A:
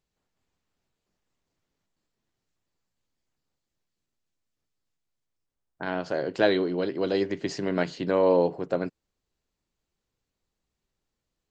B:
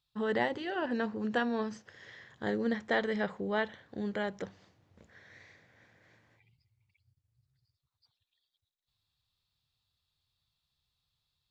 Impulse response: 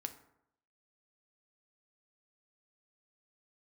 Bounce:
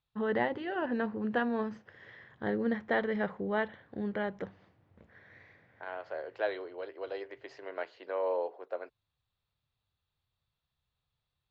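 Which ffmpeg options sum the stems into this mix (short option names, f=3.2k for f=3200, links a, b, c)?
-filter_complex "[0:a]highpass=f=470:w=0.5412,highpass=f=470:w=1.3066,volume=-8.5dB[a];[1:a]volume=0.5dB[b];[a][b]amix=inputs=2:normalize=0,lowpass=2.4k"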